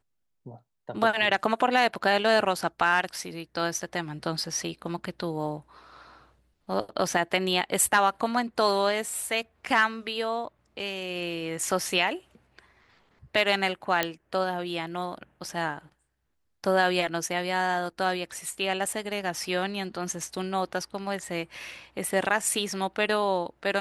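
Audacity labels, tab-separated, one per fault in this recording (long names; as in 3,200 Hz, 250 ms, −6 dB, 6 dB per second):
14.030000	14.030000	click −8 dBFS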